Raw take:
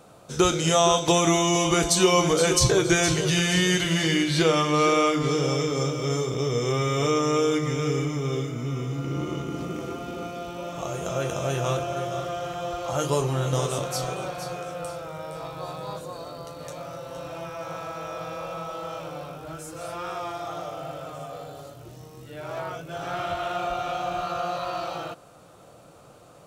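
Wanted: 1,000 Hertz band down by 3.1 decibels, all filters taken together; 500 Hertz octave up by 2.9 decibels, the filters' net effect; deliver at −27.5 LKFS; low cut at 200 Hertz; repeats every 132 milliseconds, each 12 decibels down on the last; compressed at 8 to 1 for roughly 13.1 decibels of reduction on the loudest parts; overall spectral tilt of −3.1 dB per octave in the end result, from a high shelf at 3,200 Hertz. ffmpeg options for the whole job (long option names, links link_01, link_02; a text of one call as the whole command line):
ffmpeg -i in.wav -af "highpass=200,equalizer=frequency=500:width_type=o:gain=5.5,equalizer=frequency=1000:width_type=o:gain=-8,highshelf=frequency=3200:gain=7.5,acompressor=threshold=-27dB:ratio=8,aecho=1:1:132|264|396:0.251|0.0628|0.0157,volume=3.5dB" out.wav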